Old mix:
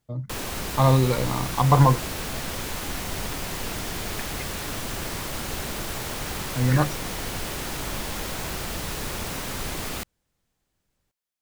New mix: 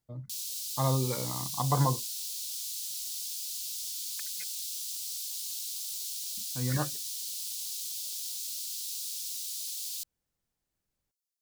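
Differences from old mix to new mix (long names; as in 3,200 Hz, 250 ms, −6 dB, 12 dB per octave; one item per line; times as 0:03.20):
speech −10.0 dB
background: add inverse Chebyshev high-pass filter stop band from 1,600 Hz, stop band 50 dB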